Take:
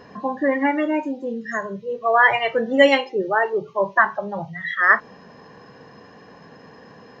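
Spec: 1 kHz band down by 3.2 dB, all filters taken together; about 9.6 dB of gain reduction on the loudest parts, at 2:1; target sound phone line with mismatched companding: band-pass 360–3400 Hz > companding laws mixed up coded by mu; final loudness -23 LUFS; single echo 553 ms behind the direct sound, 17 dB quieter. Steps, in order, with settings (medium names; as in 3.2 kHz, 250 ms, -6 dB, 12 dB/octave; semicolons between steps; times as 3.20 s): peaking EQ 1 kHz -4 dB; compression 2:1, threshold -27 dBFS; band-pass 360–3400 Hz; delay 553 ms -17 dB; companding laws mixed up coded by mu; trim +5 dB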